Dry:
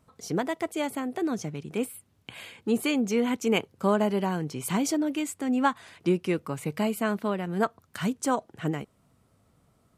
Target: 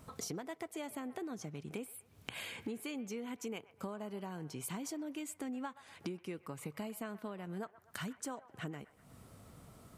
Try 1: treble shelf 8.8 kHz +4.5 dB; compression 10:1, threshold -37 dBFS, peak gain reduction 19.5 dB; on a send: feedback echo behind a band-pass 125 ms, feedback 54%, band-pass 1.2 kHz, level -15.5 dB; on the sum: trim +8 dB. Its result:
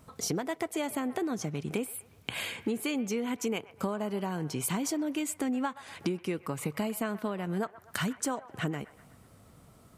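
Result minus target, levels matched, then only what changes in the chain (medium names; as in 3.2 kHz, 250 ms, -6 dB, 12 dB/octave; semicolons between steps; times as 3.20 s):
compression: peak gain reduction -10.5 dB
change: compression 10:1, threshold -48.5 dBFS, peak gain reduction 29.5 dB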